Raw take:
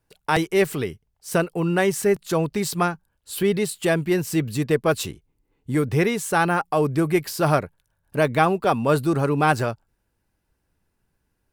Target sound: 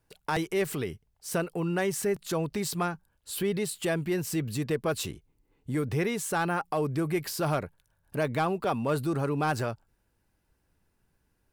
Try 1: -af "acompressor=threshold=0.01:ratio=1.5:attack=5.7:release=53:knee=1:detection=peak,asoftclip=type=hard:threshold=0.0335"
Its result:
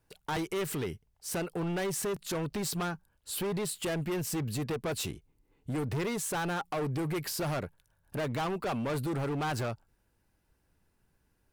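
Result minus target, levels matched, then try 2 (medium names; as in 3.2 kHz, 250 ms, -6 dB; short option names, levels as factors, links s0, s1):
hard clipper: distortion +18 dB
-af "acompressor=threshold=0.01:ratio=1.5:attack=5.7:release=53:knee=1:detection=peak,asoftclip=type=hard:threshold=0.106"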